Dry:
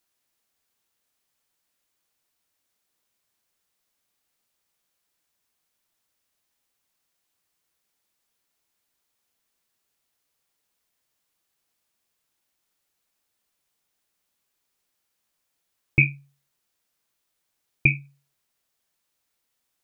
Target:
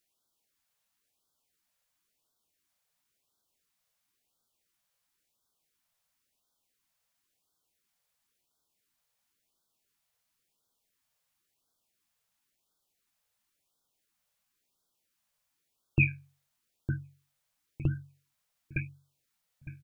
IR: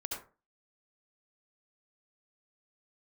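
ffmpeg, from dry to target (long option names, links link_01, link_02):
-filter_complex "[0:a]asplit=2[link_01][link_02];[link_02]asetrate=29433,aresample=44100,atempo=1.49831,volume=-9dB[link_03];[link_01][link_03]amix=inputs=2:normalize=0,asplit=2[link_04][link_05];[link_05]adelay=909,lowpass=frequency=880:poles=1,volume=-6dB,asplit=2[link_06][link_07];[link_07]adelay=909,lowpass=frequency=880:poles=1,volume=0.34,asplit=2[link_08][link_09];[link_09]adelay=909,lowpass=frequency=880:poles=1,volume=0.34,asplit=2[link_10][link_11];[link_11]adelay=909,lowpass=frequency=880:poles=1,volume=0.34[link_12];[link_04][link_06][link_08][link_10][link_12]amix=inputs=5:normalize=0,afftfilt=real='re*(1-between(b*sr/1024,290*pow(2300/290,0.5+0.5*sin(2*PI*0.96*pts/sr))/1.41,290*pow(2300/290,0.5+0.5*sin(2*PI*0.96*pts/sr))*1.41))':imag='im*(1-between(b*sr/1024,290*pow(2300/290,0.5+0.5*sin(2*PI*0.96*pts/sr))/1.41,290*pow(2300/290,0.5+0.5*sin(2*PI*0.96*pts/sr))*1.41))':win_size=1024:overlap=0.75,volume=-3.5dB"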